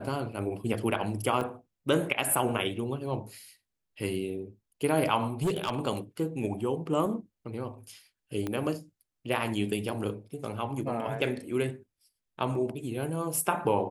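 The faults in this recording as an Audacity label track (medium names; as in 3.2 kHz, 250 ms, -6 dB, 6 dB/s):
1.410000	1.410000	dropout 2.1 ms
5.420000	5.790000	clipped -23.5 dBFS
8.470000	8.470000	pop -19 dBFS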